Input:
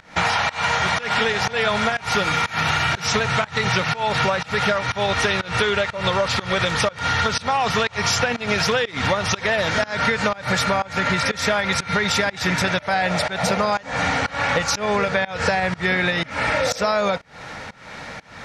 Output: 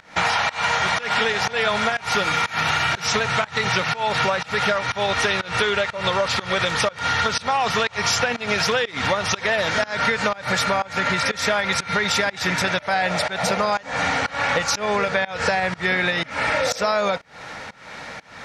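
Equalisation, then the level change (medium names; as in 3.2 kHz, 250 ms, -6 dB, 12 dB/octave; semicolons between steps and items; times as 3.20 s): bass shelf 210 Hz -6.5 dB; 0.0 dB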